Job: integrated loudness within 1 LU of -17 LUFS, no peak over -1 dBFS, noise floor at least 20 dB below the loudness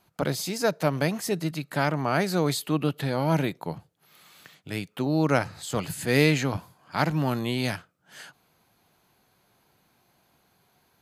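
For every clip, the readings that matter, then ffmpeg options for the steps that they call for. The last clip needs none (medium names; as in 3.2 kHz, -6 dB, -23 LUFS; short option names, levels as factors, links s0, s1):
loudness -27.0 LUFS; peak level -6.5 dBFS; loudness target -17.0 LUFS
-> -af "volume=3.16,alimiter=limit=0.891:level=0:latency=1"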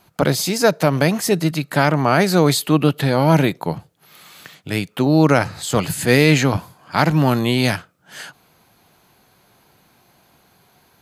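loudness -17.5 LUFS; peak level -1.0 dBFS; noise floor -57 dBFS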